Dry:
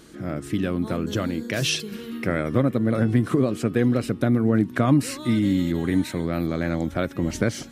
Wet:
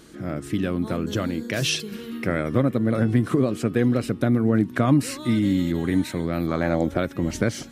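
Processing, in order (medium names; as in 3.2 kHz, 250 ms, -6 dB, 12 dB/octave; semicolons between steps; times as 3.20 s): 6.47–6.97 s: peaking EQ 1.2 kHz -> 410 Hz +9 dB 1.2 oct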